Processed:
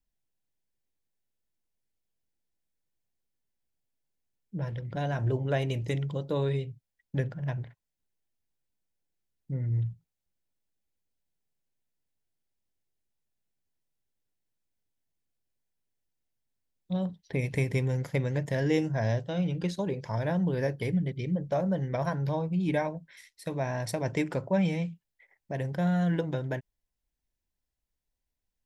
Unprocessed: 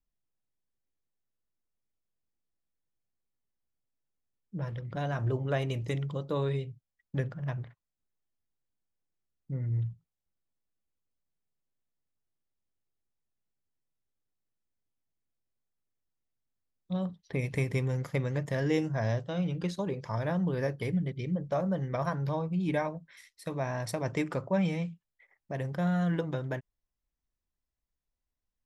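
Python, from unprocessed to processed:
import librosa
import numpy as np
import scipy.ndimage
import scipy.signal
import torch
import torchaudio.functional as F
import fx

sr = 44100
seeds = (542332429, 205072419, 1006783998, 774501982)

y = fx.peak_eq(x, sr, hz=1200.0, db=-11.5, octaves=0.22)
y = F.gain(torch.from_numpy(y), 2.0).numpy()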